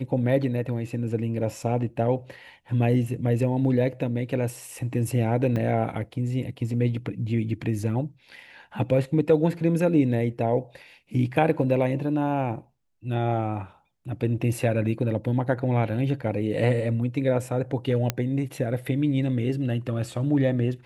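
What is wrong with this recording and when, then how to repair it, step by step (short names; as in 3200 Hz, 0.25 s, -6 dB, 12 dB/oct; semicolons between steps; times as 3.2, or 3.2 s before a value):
5.56 gap 3 ms
18.1 pop -8 dBFS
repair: de-click; interpolate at 5.56, 3 ms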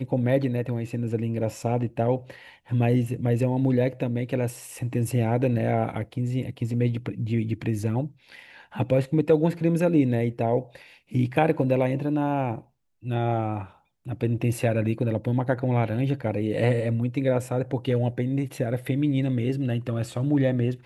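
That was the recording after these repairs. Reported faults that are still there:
18.1 pop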